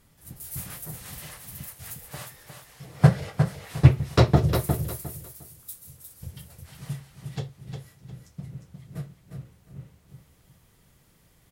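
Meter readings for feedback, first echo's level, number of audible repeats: 24%, −6.5 dB, 3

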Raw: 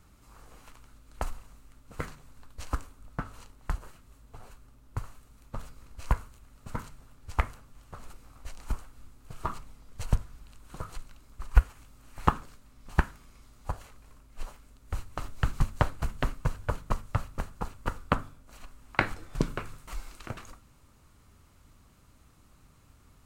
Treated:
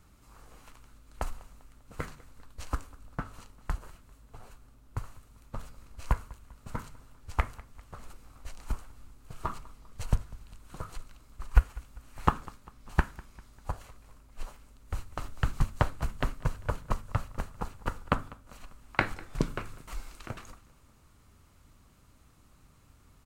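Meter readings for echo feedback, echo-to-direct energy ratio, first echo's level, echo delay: 48%, −20.5 dB, −21.5 dB, 198 ms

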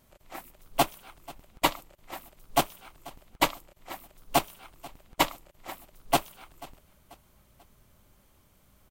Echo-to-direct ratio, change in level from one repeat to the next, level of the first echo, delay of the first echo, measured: −20.0 dB, −7.5 dB, −21.0 dB, 488 ms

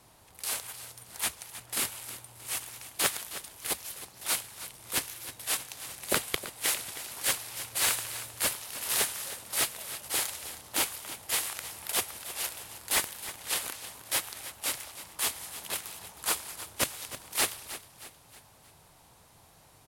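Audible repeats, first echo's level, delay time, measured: 4, −13.5 dB, 314 ms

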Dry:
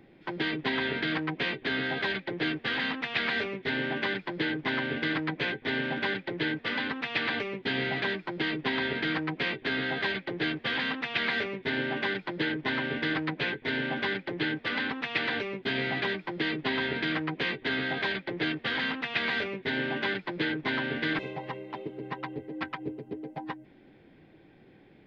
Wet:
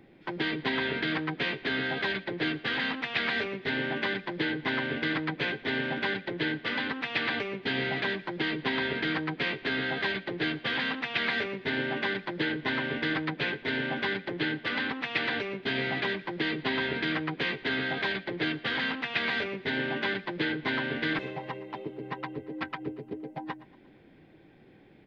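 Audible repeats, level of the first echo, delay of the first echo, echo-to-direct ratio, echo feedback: 3, −19.5 dB, 117 ms, −18.5 dB, 48%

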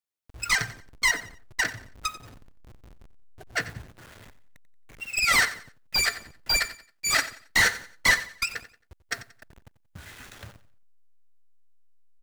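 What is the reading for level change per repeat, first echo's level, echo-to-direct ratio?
−10.0 dB, −15.5 dB, −15.0 dB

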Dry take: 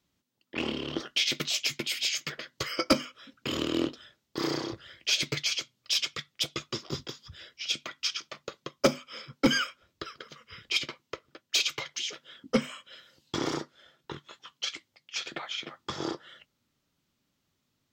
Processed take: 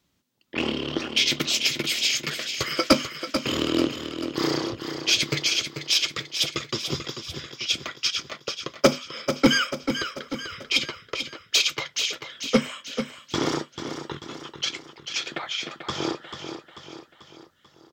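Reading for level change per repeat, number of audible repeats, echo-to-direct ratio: −6.0 dB, 4, −7.0 dB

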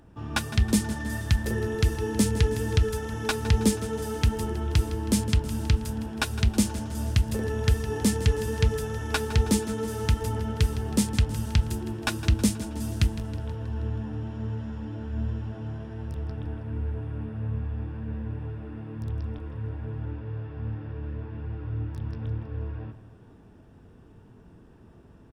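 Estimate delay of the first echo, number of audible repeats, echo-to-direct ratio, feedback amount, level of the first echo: 160 ms, 5, −13.0 dB, 57%, −14.5 dB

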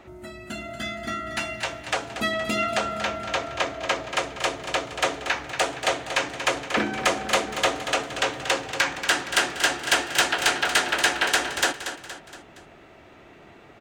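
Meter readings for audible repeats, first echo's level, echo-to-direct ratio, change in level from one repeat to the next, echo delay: 4, −10.0 dB, −9.0 dB, −6.0 dB, 234 ms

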